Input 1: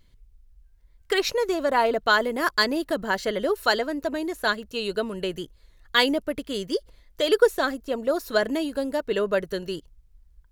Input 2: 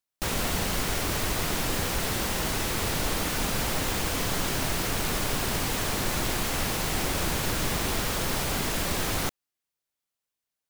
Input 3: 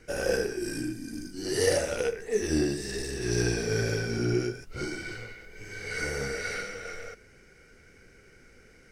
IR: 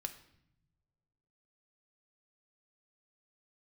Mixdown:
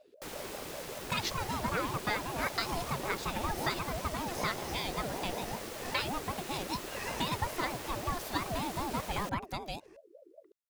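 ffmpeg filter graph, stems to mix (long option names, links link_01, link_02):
-filter_complex "[0:a]equalizer=frequency=420:width_type=o:width=0.77:gain=-7,acompressor=threshold=-25dB:ratio=6,volume=-2dB,asplit=2[link_01][link_02];[1:a]volume=-11.5dB[link_03];[2:a]adelay=1050,volume=-5dB[link_04];[link_02]apad=whole_len=439475[link_05];[link_04][link_05]sidechaincompress=threshold=-41dB:ratio=8:attack=16:release=189[link_06];[link_01][link_03][link_06]amix=inputs=3:normalize=0,aeval=exprs='val(0)*sin(2*PI*480*n/s+480*0.3/5.2*sin(2*PI*5.2*n/s))':channel_layout=same"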